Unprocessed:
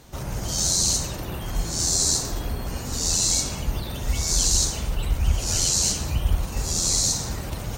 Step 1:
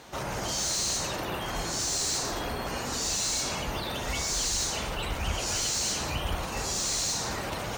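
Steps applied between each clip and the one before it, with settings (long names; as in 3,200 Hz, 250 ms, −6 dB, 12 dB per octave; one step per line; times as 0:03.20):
mid-hump overdrive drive 22 dB, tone 2,700 Hz, clips at −7 dBFS
level −8.5 dB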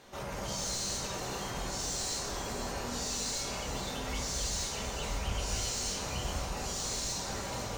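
on a send: delay that swaps between a low-pass and a high-pass 253 ms, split 1,000 Hz, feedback 61%, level −4.5 dB
on the sum: rectangular room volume 160 cubic metres, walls furnished, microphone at 1.2 metres
level −8.5 dB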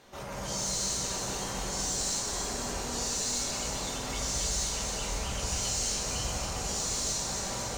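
dynamic equaliser 7,600 Hz, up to +6 dB, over −52 dBFS, Q 0.92
on a send: delay that swaps between a low-pass and a high-pass 137 ms, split 1,900 Hz, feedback 73%, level −3 dB
on the sum: level −1 dB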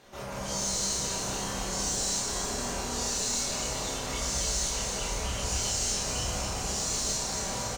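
double-tracking delay 30 ms −4 dB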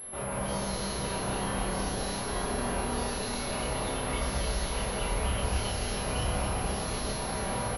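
high-frequency loss of the air 200 metres
switching amplifier with a slow clock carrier 11,000 Hz
level +4 dB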